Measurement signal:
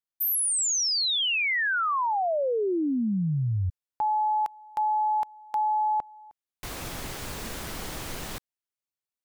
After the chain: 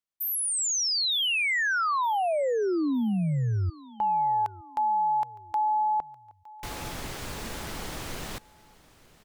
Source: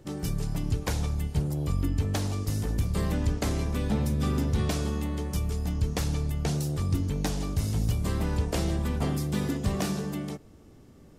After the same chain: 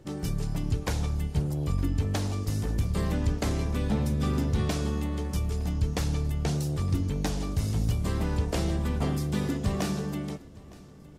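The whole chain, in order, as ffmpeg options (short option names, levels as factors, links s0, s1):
-filter_complex "[0:a]highshelf=f=9800:g=-5.5,asplit=2[s0][s1];[s1]aecho=0:1:912|1824|2736:0.0841|0.0328|0.0128[s2];[s0][s2]amix=inputs=2:normalize=0"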